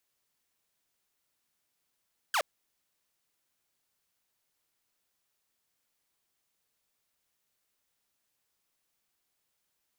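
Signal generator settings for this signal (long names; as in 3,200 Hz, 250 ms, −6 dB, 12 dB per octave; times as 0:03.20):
single falling chirp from 1,700 Hz, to 520 Hz, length 0.07 s saw, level −22.5 dB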